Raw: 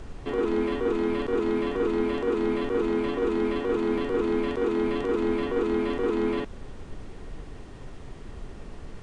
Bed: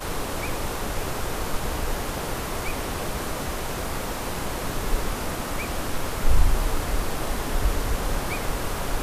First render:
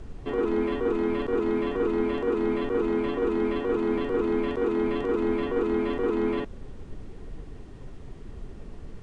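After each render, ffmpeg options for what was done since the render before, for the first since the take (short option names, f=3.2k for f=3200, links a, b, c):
-af "afftdn=nr=6:nf=-42"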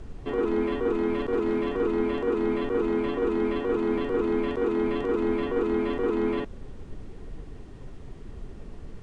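-filter_complex "[0:a]asettb=1/sr,asplit=3[a][b][c];[a]atrim=end=1.084[d];[b]atrim=start=1.08:end=1.81,asetpts=PTS-STARTPTS,afade=t=in:d=0.004:c=qsin,afade=t=out:st=0.726:d=0.004:c=qsin,asoftclip=type=hard:threshold=-19dB[e];[c]atrim=start=1.806[f];[d][e]acrossfade=d=0.004:c1=hsin:c2=qsin[g];[g][f]acrossfade=d=0.004:c1=qsin:c2=hsin"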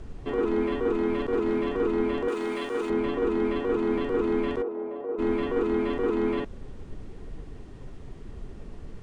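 -filter_complex "[0:a]asettb=1/sr,asplit=3[a][b][c];[a]atrim=end=2.284[d];[b]atrim=start=2.28:end=2.9,asetpts=PTS-STARTPTS,afade=t=in:d=0.004:c=qsin,afade=t=out:st=0.616:d=0.004:c=qsin,aemphasis=mode=production:type=riaa[e];[c]atrim=start=2.896[f];[d][e]acrossfade=d=0.004:c1=hsin:c2=qsin[g];[g][f]acrossfade=d=0.004:c1=qsin:c2=hsin,asplit=3[h][i][j];[h]afade=t=out:st=4.61:d=0.02[k];[i]bandpass=f=590:t=q:w=2.3,afade=t=in:st=4.61:d=0.02,afade=t=out:st=5.18:d=0.02[l];[j]afade=t=in:st=5.18:d=0.02[m];[k][l][m]amix=inputs=3:normalize=0"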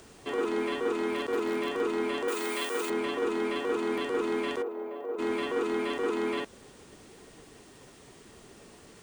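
-af "highpass=f=76:p=1,aemphasis=mode=production:type=riaa"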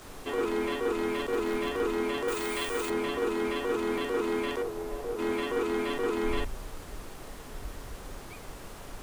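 -filter_complex "[1:a]volume=-17dB[a];[0:a][a]amix=inputs=2:normalize=0"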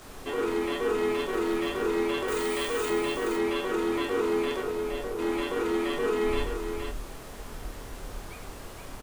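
-filter_complex "[0:a]asplit=2[a][b];[b]adelay=26,volume=-8dB[c];[a][c]amix=inputs=2:normalize=0,aecho=1:1:95|468:0.299|0.501"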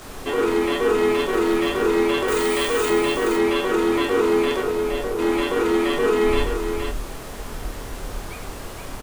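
-af "volume=8dB"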